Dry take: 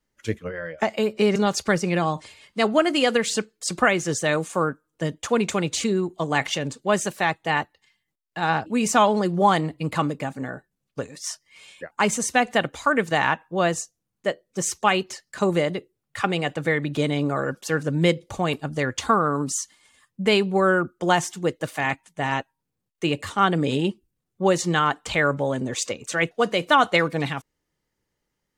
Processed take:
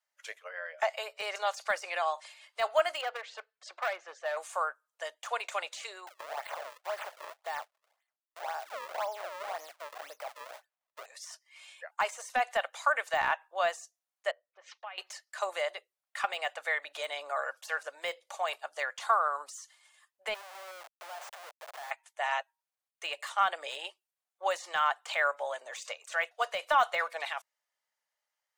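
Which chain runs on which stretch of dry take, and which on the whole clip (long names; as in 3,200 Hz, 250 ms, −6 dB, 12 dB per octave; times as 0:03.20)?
0:03.01–0:04.37: head-to-tape spacing loss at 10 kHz 38 dB + hard clipping −19 dBFS + one half of a high-frequency compander encoder only
0:06.07–0:11.06: low-shelf EQ 170 Hz +6 dB + downward compressor 3 to 1, threshold −21 dBFS + sample-and-hold swept by an LFO 34×, swing 160% 1.9 Hz
0:14.31–0:14.98: low-pass filter 3,400 Hz 24 dB per octave + downward compressor 8 to 1, threshold −34 dBFS + multiband upward and downward expander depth 70%
0:20.34–0:21.91: downward compressor 8 to 1, threshold −27 dBFS + comparator with hysteresis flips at −36 dBFS
whole clip: elliptic high-pass filter 620 Hz, stop band 70 dB; de-essing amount 80%; level −4.5 dB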